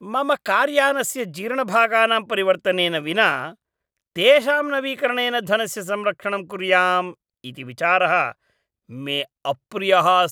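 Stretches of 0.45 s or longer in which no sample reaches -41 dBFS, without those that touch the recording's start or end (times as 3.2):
3.54–4.16
8.32–8.89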